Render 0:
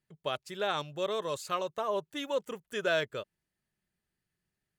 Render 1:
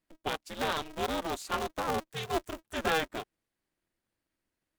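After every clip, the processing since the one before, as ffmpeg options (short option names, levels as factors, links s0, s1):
-af "aeval=exprs='val(0)*sgn(sin(2*PI*160*n/s))':c=same"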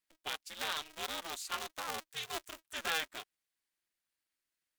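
-af "tiltshelf=f=970:g=-9.5,volume=0.376"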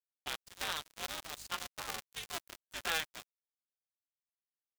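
-af "aeval=exprs='val(0)+0.00178*(sin(2*PI*50*n/s)+sin(2*PI*2*50*n/s)/2+sin(2*PI*3*50*n/s)/3+sin(2*PI*4*50*n/s)/4+sin(2*PI*5*50*n/s)/5)':c=same,aeval=exprs='sgn(val(0))*max(abs(val(0))-0.00708,0)':c=same,volume=1.26"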